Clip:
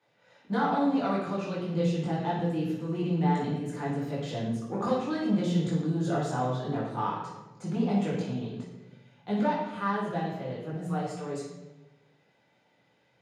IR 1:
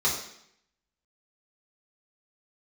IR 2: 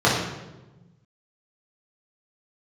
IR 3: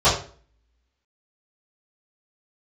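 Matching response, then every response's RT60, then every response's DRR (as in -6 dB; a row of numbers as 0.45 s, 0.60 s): 2; 0.70 s, 1.1 s, 0.45 s; -7.0 dB, -7.0 dB, -16.5 dB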